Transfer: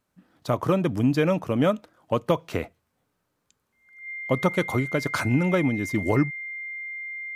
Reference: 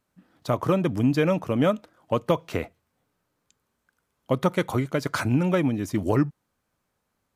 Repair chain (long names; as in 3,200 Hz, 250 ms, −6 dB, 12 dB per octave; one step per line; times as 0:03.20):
notch filter 2,100 Hz, Q 30